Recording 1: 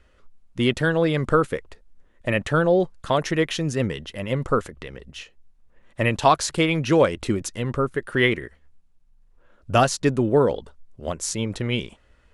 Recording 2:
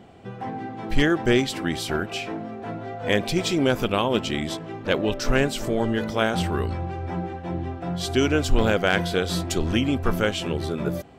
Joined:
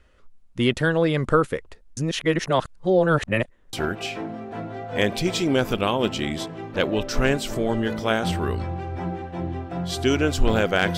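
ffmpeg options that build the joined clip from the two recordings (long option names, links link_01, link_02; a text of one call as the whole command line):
ffmpeg -i cue0.wav -i cue1.wav -filter_complex "[0:a]apad=whole_dur=10.97,atrim=end=10.97,asplit=2[link_01][link_02];[link_01]atrim=end=1.972[link_03];[link_02]atrim=start=1.968:end=3.732,asetpts=PTS-STARTPTS,areverse[link_04];[1:a]atrim=start=1.838:end=9.08[link_05];[link_03][link_04]acrossfade=duration=0.004:curve1=hsin:curve2=hsin[link_06];[link_06][link_05]acrossfade=duration=0.004:curve1=hsin:curve2=hsin" out.wav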